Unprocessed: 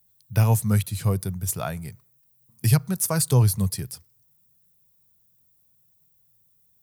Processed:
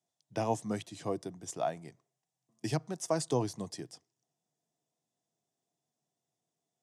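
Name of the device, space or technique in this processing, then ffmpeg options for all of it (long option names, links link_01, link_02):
television speaker: -af "highpass=frequency=180:width=0.5412,highpass=frequency=180:width=1.3066,equalizer=frequency=190:width_type=q:width=4:gain=-9,equalizer=frequency=310:width_type=q:width=4:gain=9,equalizer=frequency=700:width_type=q:width=4:gain=8,equalizer=frequency=1400:width_type=q:width=4:gain=-8,equalizer=frequency=2400:width_type=q:width=4:gain=-6,equalizer=frequency=4300:width_type=q:width=4:gain=-8,lowpass=frequency=6800:width=0.5412,lowpass=frequency=6800:width=1.3066,volume=-5.5dB"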